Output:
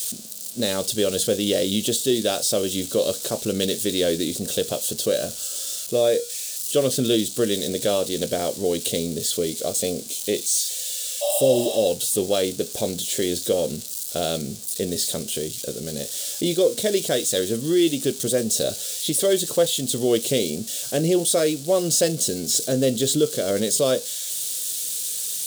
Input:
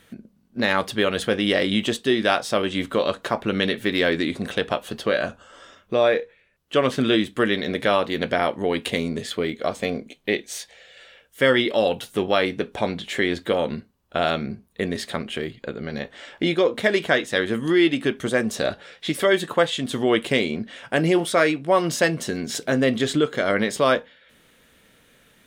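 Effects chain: zero-crossing glitches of -21 dBFS; graphic EQ 125/500/1000/2000/4000/8000 Hz +5/+8/-10/-11/+7/+10 dB; spectral replace 11.24–11.76 s, 580–7000 Hz after; trim -4 dB

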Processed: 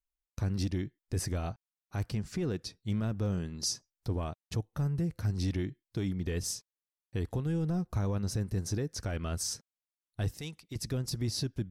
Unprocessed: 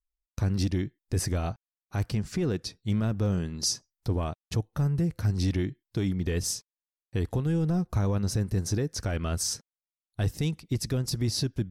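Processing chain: 10.34–10.76 s: bass shelf 440 Hz -11 dB; trim -5 dB

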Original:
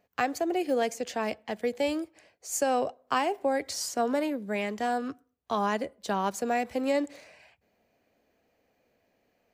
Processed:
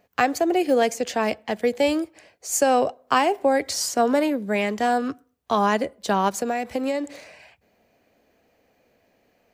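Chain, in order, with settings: 6.28–7.06 s: compression 10:1, threshold -29 dBFS, peak gain reduction 8 dB; trim +7.5 dB

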